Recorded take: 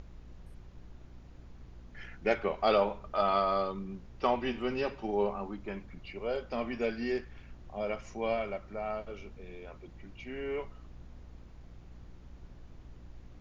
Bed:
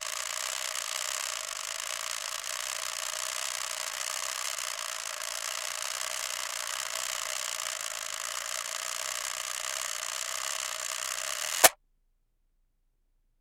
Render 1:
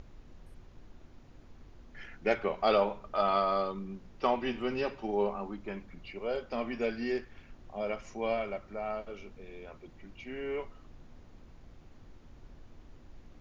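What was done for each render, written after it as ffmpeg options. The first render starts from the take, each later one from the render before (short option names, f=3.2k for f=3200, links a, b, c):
-af "bandreject=f=60:t=h:w=4,bandreject=f=120:t=h:w=4,bandreject=f=180:t=h:w=4"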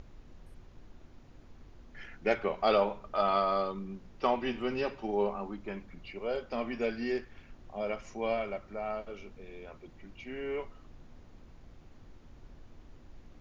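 -af anull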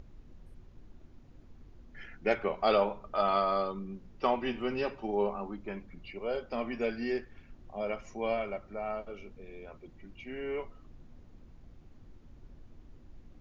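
-af "afftdn=nr=6:nf=-55"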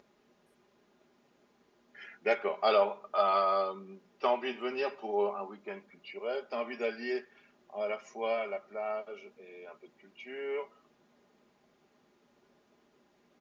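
-af "highpass=410,aecho=1:1:4.9:0.47"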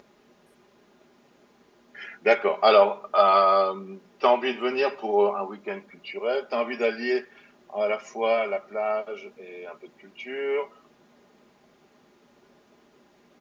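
-af "volume=9dB"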